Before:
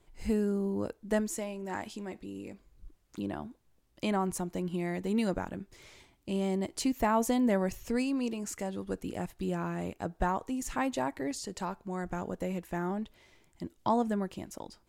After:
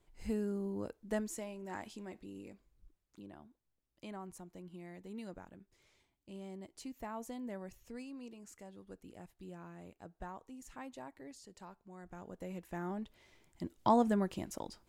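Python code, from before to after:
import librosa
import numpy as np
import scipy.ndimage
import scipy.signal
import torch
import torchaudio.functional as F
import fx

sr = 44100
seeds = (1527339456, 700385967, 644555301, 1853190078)

y = fx.gain(x, sr, db=fx.line((2.4, -7.0), (3.26, -16.5), (11.97, -16.5), (12.59, -8.5), (13.91, 0.0)))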